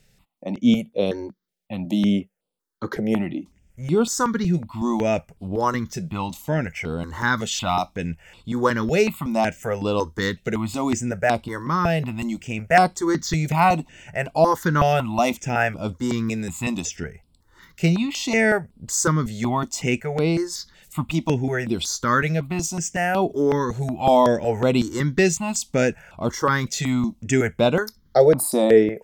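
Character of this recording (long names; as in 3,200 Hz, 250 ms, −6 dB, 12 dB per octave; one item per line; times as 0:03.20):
notches that jump at a steady rate 5.4 Hz 280–6,300 Hz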